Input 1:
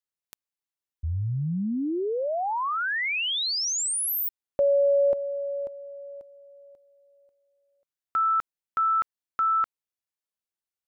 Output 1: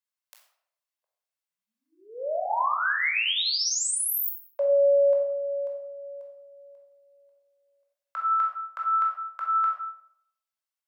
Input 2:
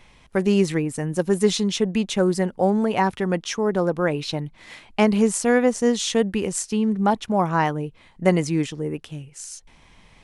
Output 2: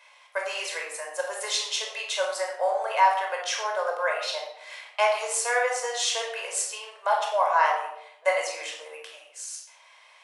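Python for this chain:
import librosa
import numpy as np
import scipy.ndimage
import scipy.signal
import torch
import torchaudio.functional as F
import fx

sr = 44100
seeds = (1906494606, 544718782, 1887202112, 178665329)

y = scipy.signal.sosfilt(scipy.signal.butter(8, 590.0, 'highpass', fs=sr, output='sos'), x)
y = fx.room_shoebox(y, sr, seeds[0], volume_m3=1900.0, walls='furnished', distance_m=5.2)
y = y * 10.0 ** (-3.5 / 20.0)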